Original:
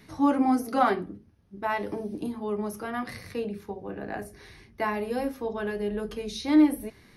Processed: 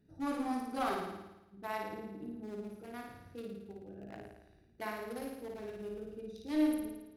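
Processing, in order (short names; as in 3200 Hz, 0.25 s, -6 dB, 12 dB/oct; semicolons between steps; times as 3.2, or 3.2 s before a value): Wiener smoothing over 41 samples; pre-emphasis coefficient 0.8; one-sided clip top -34 dBFS; on a send: flutter echo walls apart 9.5 m, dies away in 0.97 s; on the sum: gain +1 dB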